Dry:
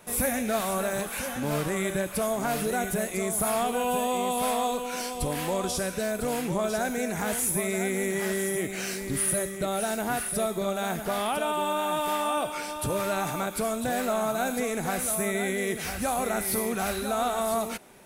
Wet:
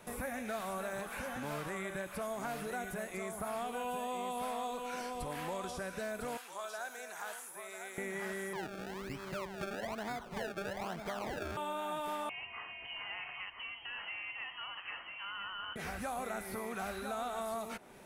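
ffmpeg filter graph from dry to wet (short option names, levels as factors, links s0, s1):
-filter_complex "[0:a]asettb=1/sr,asplit=3[s0][s1][s2];[s0]atrim=end=6.374[s3];[s1]atrim=start=6.37:end=7.98,asetpts=PTS-STARTPTS,afade=t=in:d=0.004:c=qsin,afade=t=out:st=1.606:d=0.004:c=qsin,highpass=1300,equalizer=f=2100:w=2.7:g=-8.5[s4];[s2]atrim=start=7.976[s5];[s3][s4]acrossfade=d=0.004:c1=hsin:c2=qsin[s6];[s6][s5]acrossfade=d=0.004:c1=qsin:c2=hsin,asettb=1/sr,asplit=3[s7][s8][s9];[s7]atrim=end=8.534[s10];[s8]atrim=start=8.53:end=11.57,asetpts=PTS-STARTPTS,afade=t=in:d=0.004:c=qsin,afade=t=out:st=3.036:d=0.004:c=qsin,lowpass=f=1500:w=0.5412,lowpass=f=1500:w=1.3066,acrusher=samples=30:mix=1:aa=0.000001:lfo=1:lforange=30:lforate=1.1[s11];[s9]atrim=start=11.566[s12];[s10][s11]acrossfade=d=0.004:c1=hsin:c2=qsin[s13];[s13][s12]acrossfade=d=0.004:c1=qsin:c2=hsin,asettb=1/sr,asplit=3[s14][s15][s16];[s14]atrim=end=12.294[s17];[s15]atrim=start=12.29:end=15.76,asetpts=PTS-STARTPTS,afade=t=in:d=0.004:c=qsin,afade=t=out:st=3.466:d=0.004:c=qsin,highpass=f=340:w=0.5412,highpass=f=340:w=1.3066,flanger=delay=1.1:depth=7.1:regen=-79:speed=1.5:shape=triangular,lowpass=f=2900:t=q:w=0.5098,lowpass=f=2900:t=q:w=0.6013,lowpass=f=2900:t=q:w=0.9,lowpass=f=2900:t=q:w=2.563,afreqshift=-3400[s18];[s16]atrim=start=15.756[s19];[s17][s18]acrossfade=d=0.004:c1=hsin:c2=qsin[s20];[s20][s19]acrossfade=d=0.004:c1=qsin:c2=hsin,highshelf=f=5700:g=-6,acrossover=split=810|1900[s21][s22][s23];[s21]acompressor=threshold=0.00891:ratio=4[s24];[s22]acompressor=threshold=0.01:ratio=4[s25];[s23]acompressor=threshold=0.00355:ratio=4[s26];[s24][s25][s26]amix=inputs=3:normalize=0,volume=0.794"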